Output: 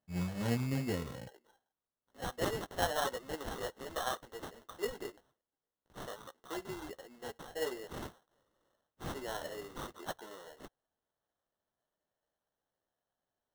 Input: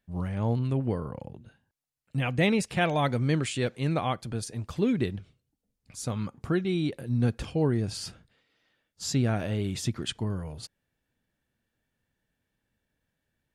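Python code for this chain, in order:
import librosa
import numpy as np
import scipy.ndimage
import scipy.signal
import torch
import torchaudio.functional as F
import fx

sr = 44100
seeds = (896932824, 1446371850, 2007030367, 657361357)

y = fx.highpass(x, sr, hz=fx.steps((0.0, 62.0), (1.27, 440.0)), slope=24)
y = fx.quant_float(y, sr, bits=2)
y = fx.chorus_voices(y, sr, voices=2, hz=1.2, base_ms=14, depth_ms=3.0, mix_pct=45)
y = fx.sample_hold(y, sr, seeds[0], rate_hz=2400.0, jitter_pct=0)
y = F.gain(torch.from_numpy(y), -3.0).numpy()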